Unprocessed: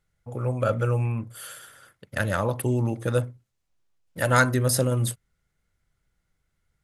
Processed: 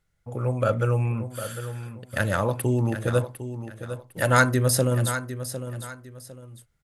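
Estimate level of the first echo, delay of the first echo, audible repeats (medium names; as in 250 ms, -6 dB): -11.0 dB, 754 ms, 2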